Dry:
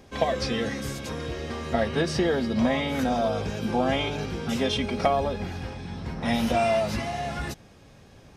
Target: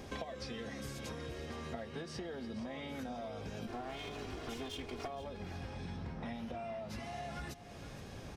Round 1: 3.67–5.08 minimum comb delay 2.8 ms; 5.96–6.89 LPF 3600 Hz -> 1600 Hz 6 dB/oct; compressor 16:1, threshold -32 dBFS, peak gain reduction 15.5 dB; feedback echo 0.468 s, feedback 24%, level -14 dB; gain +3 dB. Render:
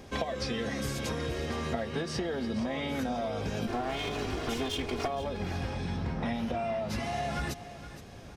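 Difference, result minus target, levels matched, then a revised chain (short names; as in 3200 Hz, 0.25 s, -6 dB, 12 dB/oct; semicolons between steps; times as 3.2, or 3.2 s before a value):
compressor: peak gain reduction -10.5 dB
3.67–5.08 minimum comb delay 2.8 ms; 5.96–6.89 LPF 3600 Hz -> 1600 Hz 6 dB/oct; compressor 16:1, threshold -43 dBFS, peak gain reduction 26 dB; feedback echo 0.468 s, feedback 24%, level -14 dB; gain +3 dB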